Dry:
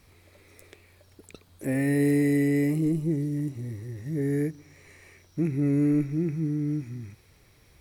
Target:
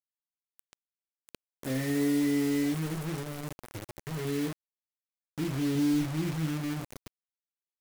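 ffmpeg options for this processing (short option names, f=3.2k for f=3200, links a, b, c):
-filter_complex "[0:a]asettb=1/sr,asplit=3[a][b][c];[a]atrim=end=5.754[d];[b]atrim=start=5.75:end=6.6,asetpts=PTS-STARTPTS,afade=t=in:d=0.004:c=qsin,afade=t=out:st=0.846:d=0.004:c=qsin,aecho=1:1:0.9:0.55,atrim=end_sample=37485[e];[c]atrim=start=6.596[f];[d][e]acrossfade=d=0.004:c1=hsin:c2=qsin[g];[g][f]acrossfade=d=0.004:c1=qsin:c2=hsin,aecho=1:1:21|38:0.141|0.562,asplit=2[h][i];[i]asoftclip=type=hard:threshold=-24.5dB,volume=-9.5dB[j];[h][j]amix=inputs=2:normalize=0,asettb=1/sr,asplit=3[k][l][m];[k]atrim=end=2.744[n];[l]atrim=start=2.74:end=4.25,asetpts=PTS-STARTPTS,afade=t=in:d=0.004:c=qsin,afade=t=out:st=1.506:d=0.004:c=qsin,equalizer=f=270:t=o:w=0.4:g=-14.5[o];[m]atrim=start=4.246[p];[n][o]acrossfade=d=0.004:c1=hsin:c2=qsin[q];[q][p]acrossfade=d=0.004:c1=qsin:c2=hsin,acrusher=bits=4:mix=0:aa=0.000001,volume=-8.5dB"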